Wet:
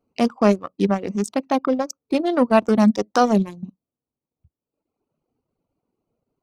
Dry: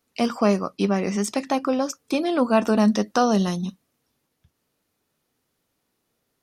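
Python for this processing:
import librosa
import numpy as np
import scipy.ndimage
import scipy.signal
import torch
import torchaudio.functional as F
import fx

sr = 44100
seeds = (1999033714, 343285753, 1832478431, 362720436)

y = fx.wiener(x, sr, points=25)
y = fx.dereverb_blind(y, sr, rt60_s=1.3)
y = fx.transient(y, sr, attack_db=-2, sustain_db=-7)
y = y * 10.0 ** (5.0 / 20.0)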